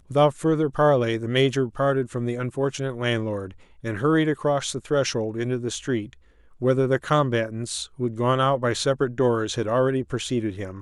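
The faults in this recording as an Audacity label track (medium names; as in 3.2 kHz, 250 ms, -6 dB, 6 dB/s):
7.090000	7.090000	dropout 2.5 ms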